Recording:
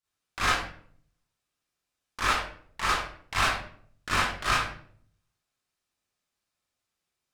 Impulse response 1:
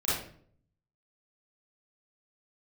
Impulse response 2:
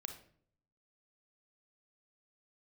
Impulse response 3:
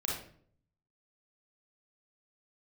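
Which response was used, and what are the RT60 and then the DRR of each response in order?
1; 0.55, 0.55, 0.55 s; -11.0, 5.5, -4.0 dB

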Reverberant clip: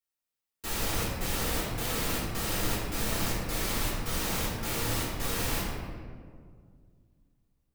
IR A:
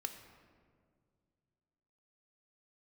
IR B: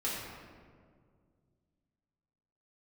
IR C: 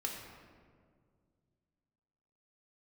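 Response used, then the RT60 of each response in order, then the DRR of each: B; 2.1, 2.0, 2.0 s; 6.0, -8.0, -1.0 dB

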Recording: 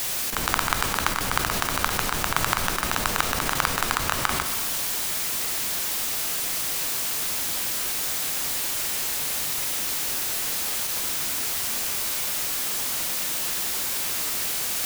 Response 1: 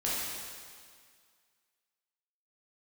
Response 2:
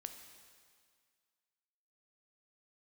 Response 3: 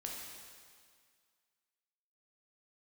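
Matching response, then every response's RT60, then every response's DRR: 2; 1.9, 1.9, 2.0 s; -8.0, 6.0, -2.0 dB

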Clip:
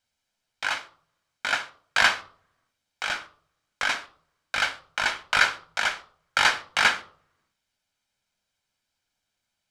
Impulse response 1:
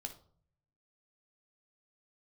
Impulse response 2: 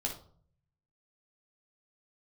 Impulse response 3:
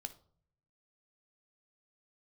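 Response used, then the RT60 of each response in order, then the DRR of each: 3; 0.55, 0.50, 0.55 s; 4.5, -1.5, 9.0 dB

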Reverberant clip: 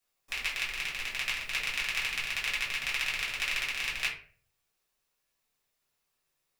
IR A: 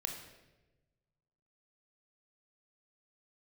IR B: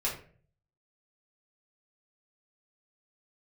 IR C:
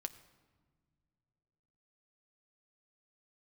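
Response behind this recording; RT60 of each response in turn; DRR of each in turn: B; 1.1 s, 0.45 s, not exponential; 2.5, -6.5, 9.5 dB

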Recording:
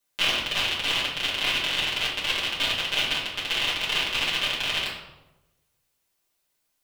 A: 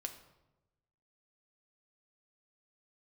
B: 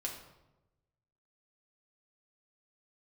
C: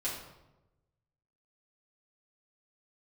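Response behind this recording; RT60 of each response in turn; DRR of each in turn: C; 1.0, 1.0, 1.0 s; 5.0, -1.0, -8.5 dB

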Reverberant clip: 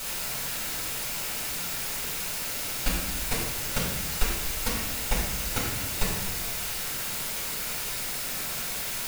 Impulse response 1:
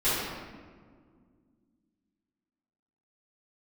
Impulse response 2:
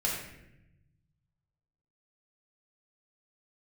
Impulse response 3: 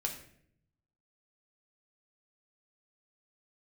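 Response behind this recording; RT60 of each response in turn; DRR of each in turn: 2; 1.8, 0.85, 0.65 s; -16.0, -4.0, 1.0 dB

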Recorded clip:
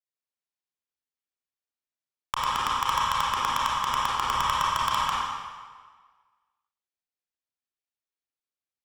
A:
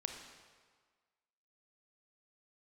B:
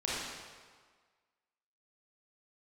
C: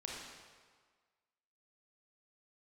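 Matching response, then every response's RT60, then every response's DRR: B; 1.6, 1.6, 1.6 s; 4.0, -7.5, -3.0 dB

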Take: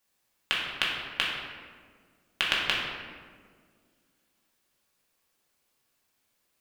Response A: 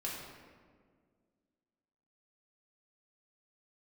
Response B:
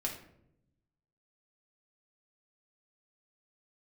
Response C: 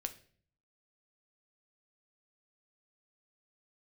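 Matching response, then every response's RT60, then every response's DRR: A; 1.8, 0.75, 0.50 s; -5.5, -1.5, 7.5 dB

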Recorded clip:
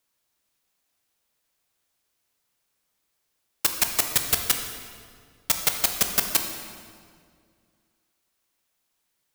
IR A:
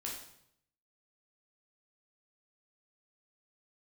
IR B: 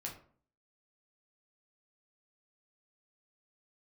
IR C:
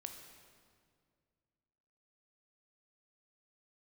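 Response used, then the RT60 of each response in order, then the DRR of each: C; 0.70, 0.50, 2.1 s; -3.0, -1.5, 4.5 dB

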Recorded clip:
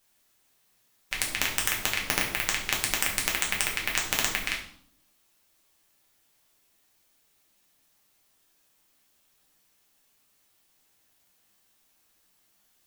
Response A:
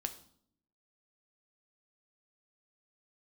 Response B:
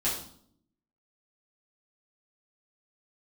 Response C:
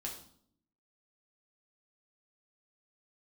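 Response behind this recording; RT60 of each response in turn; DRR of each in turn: C; 0.60, 0.60, 0.60 s; 7.0, -9.5, -2.0 dB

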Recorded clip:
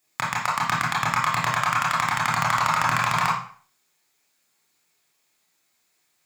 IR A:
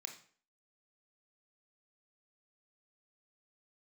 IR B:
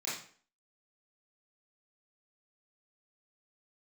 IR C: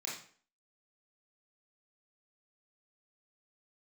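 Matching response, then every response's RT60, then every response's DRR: C; 0.45, 0.45, 0.45 s; 4.0, -9.5, -5.0 dB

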